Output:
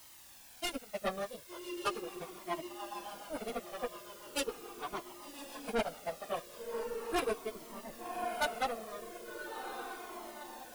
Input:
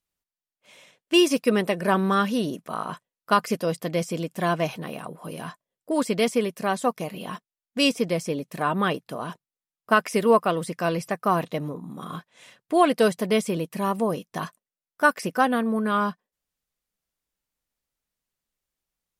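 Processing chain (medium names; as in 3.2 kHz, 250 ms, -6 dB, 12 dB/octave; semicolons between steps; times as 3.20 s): square tremolo 0.6 Hz, depth 65%, duty 85%; power-law waveshaper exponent 3; plain phase-vocoder stretch 0.56×; peaking EQ 560 Hz +10 dB 2.2 oct; on a send: echo that smears into a reverb 1141 ms, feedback 60%, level -13.5 dB; on the sum: rotary cabinet horn 7 Hz, later 0.65 Hz, at 6.31 s; peaking EQ 9.8 kHz +10.5 dB 0.22 oct; word length cut 10-bit, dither triangular; saturation -32 dBFS, distortion -2 dB; Shepard-style flanger falling 0.39 Hz; trim +9 dB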